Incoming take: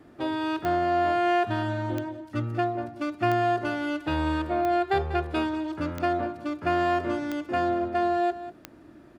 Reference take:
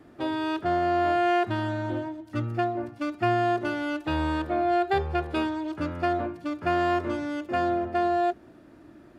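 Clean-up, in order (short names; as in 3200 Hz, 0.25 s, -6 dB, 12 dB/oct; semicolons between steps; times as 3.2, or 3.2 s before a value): de-click; inverse comb 0.192 s -14 dB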